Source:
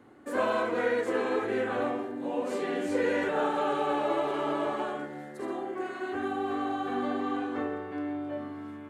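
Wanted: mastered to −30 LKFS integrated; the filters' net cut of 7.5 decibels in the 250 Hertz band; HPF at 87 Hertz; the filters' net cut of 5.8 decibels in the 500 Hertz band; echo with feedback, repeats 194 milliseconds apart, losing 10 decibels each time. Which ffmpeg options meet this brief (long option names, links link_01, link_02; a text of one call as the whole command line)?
ffmpeg -i in.wav -af "highpass=87,equalizer=frequency=250:width_type=o:gain=-7.5,equalizer=frequency=500:width_type=o:gain=-5,aecho=1:1:194|388|582|776:0.316|0.101|0.0324|0.0104,volume=4dB" out.wav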